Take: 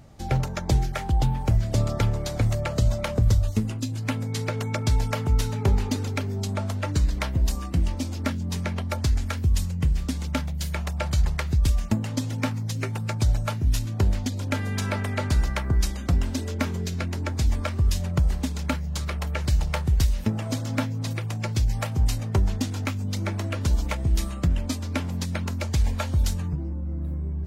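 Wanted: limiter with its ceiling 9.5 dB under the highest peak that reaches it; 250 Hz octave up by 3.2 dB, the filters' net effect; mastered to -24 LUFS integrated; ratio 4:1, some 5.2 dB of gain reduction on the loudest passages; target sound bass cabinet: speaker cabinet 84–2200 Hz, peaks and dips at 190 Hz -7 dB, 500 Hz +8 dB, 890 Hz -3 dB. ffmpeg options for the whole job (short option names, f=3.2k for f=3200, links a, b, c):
-af "equalizer=f=250:t=o:g=6,acompressor=threshold=-21dB:ratio=4,alimiter=limit=-20.5dB:level=0:latency=1,highpass=f=84:w=0.5412,highpass=f=84:w=1.3066,equalizer=f=190:t=q:w=4:g=-7,equalizer=f=500:t=q:w=4:g=8,equalizer=f=890:t=q:w=4:g=-3,lowpass=f=2.2k:w=0.5412,lowpass=f=2.2k:w=1.3066,volume=8.5dB"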